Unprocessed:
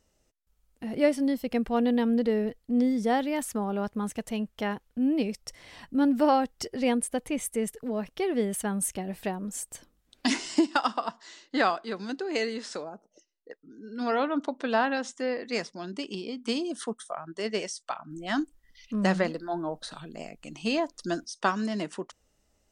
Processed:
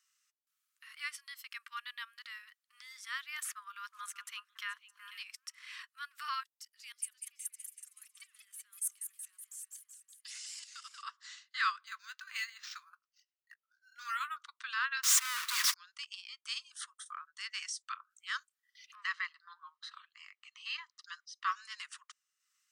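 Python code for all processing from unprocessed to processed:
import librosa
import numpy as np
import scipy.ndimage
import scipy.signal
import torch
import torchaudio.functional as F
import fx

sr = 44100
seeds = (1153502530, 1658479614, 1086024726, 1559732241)

y = fx.chain(x, sr, fx.echo_stepped(ms=123, hz=160.0, octaves=1.4, feedback_pct=70, wet_db=-3.0),
    fx.band_squash(depth_pct=40), at=(3.44, 5.83))
y = fx.chain(y, sr, fx.differentiator(),
    fx.level_steps(step_db=15),
    fx.echo_warbled(ms=187, feedback_pct=67, rate_hz=2.8, cents=215, wet_db=-7.5), at=(6.43, 11.03))
y = fx.chain(y, sr, fx.peak_eq(hz=250.0, db=-12.0, octaves=0.74),
    fx.doubler(ms=21.0, db=-14),
    fx.resample_linear(factor=4), at=(11.86, 14.37))
y = fx.chain(y, sr, fx.clip_1bit(),
    fx.small_body(hz=(210.0, 310.0, 960.0), ring_ms=45, db=13),
    fx.env_flatten(amount_pct=100), at=(15.03, 15.74))
y = fx.chain(y, sr, fx.air_absorb(metres=150.0),
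    fx.comb(ms=1.0, depth=0.45), at=(18.95, 21.52))
y = scipy.signal.sosfilt(scipy.signal.butter(16, 1100.0, 'highpass', fs=sr, output='sos'), y)
y = fx.transient(y, sr, attack_db=-4, sustain_db=-8)
y = y * librosa.db_to_amplitude(-1.0)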